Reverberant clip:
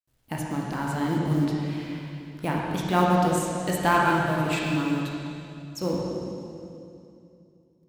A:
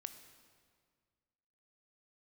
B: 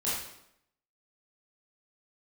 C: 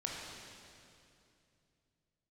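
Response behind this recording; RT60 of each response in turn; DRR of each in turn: C; 1.9, 0.75, 2.7 s; 9.0, -9.5, -3.0 dB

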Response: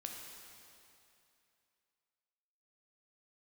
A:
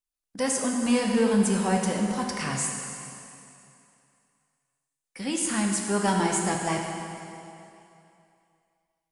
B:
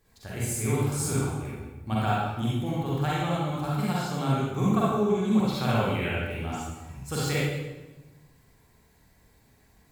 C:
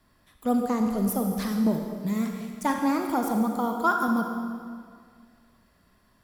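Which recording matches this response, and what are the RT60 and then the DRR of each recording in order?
A; 2.7, 1.1, 2.0 s; 0.5, -7.5, 3.0 dB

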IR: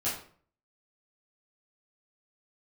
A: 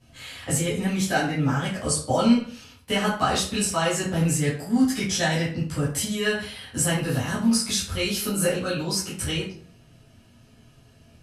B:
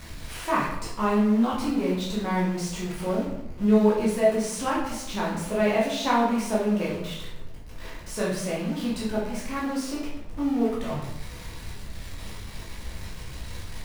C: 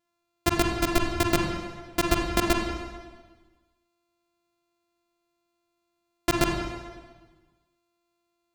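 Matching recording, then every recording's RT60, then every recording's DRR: A; 0.50, 0.80, 1.4 s; -10.5, -6.5, 0.5 dB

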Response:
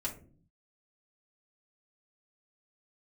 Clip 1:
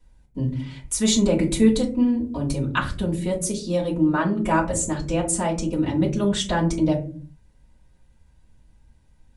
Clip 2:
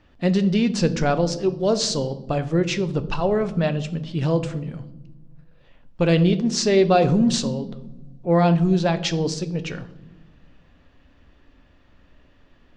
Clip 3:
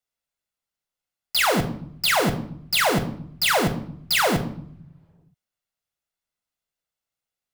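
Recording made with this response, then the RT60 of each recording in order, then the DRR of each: 1; 0.45 s, not exponential, 0.70 s; -5.0, 9.5, 5.5 dB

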